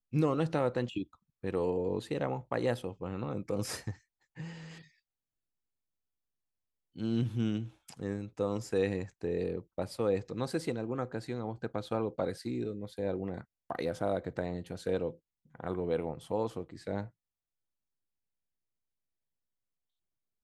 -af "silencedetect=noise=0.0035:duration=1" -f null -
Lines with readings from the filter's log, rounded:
silence_start: 4.84
silence_end: 6.96 | silence_duration: 2.12
silence_start: 17.09
silence_end: 20.43 | silence_duration: 3.35